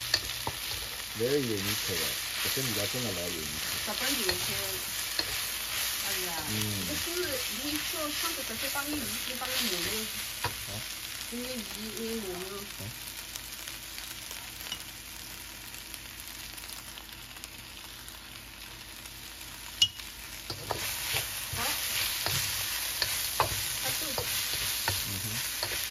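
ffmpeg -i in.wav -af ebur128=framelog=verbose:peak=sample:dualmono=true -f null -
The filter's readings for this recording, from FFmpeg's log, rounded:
Integrated loudness:
  I:         -28.4 LUFS
  Threshold: -38.7 LUFS
Loudness range:
  LRA:        10.9 LU
  Threshold: -48.9 LUFS
  LRA low:   -37.2 LUFS
  LRA high:  -26.3 LUFS
Sample peak:
  Peak:       -8.6 dBFS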